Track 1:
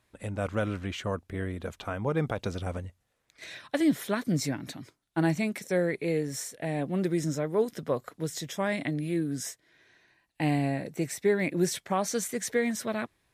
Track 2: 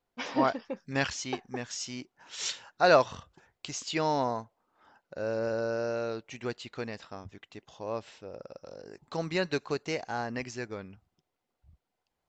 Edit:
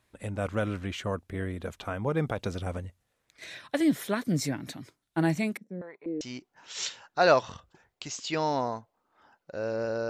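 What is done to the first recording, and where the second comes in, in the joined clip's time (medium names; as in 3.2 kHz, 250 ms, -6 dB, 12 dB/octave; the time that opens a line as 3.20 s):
track 1
5.57–6.21 s: step-sequenced band-pass 4.1 Hz 220–2900 Hz
6.21 s: go over to track 2 from 1.84 s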